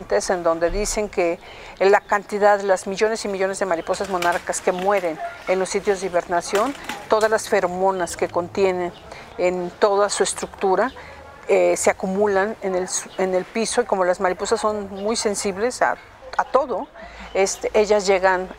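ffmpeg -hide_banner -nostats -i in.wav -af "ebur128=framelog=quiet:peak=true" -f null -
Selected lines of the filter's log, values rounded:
Integrated loudness:
  I:         -21.0 LUFS
  Threshold: -31.2 LUFS
Loudness range:
  LRA:         1.9 LU
  Threshold: -41.4 LUFS
  LRA low:   -22.2 LUFS
  LRA high:  -20.4 LUFS
True peak:
  Peak:       -3.5 dBFS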